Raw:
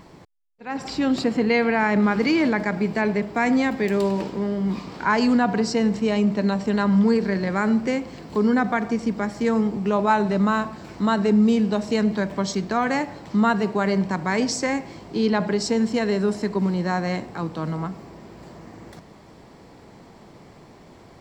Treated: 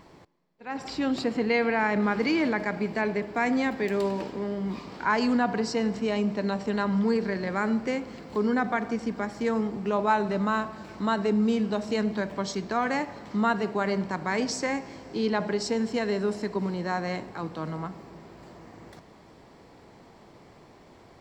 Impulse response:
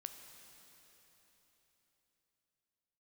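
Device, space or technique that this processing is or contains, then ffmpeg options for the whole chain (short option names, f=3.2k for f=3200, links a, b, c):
filtered reverb send: -filter_complex "[0:a]asplit=2[a][b];[b]highpass=f=160:w=0.5412,highpass=f=160:w=1.3066,lowpass=6.5k[c];[1:a]atrim=start_sample=2205[d];[c][d]afir=irnorm=-1:irlink=0,volume=-6dB[e];[a][e]amix=inputs=2:normalize=0,volume=-6dB"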